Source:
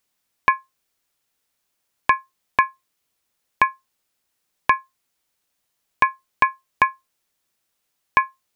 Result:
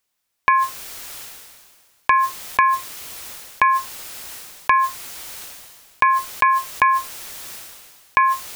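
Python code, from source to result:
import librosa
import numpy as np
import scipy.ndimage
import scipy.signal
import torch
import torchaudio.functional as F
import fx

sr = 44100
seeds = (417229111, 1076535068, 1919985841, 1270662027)

y = fx.peak_eq(x, sr, hz=210.0, db=-4.5, octaves=1.8)
y = fx.sustainer(y, sr, db_per_s=32.0)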